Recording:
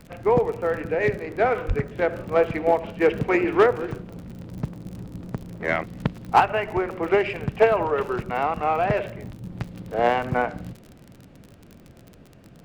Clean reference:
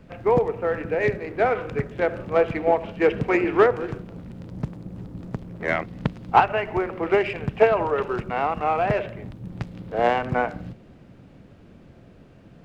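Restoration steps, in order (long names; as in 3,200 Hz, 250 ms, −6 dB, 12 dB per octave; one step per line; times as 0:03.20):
clipped peaks rebuilt −8 dBFS
click removal
0:01.67–0:01.79: high-pass filter 140 Hz 24 dB per octave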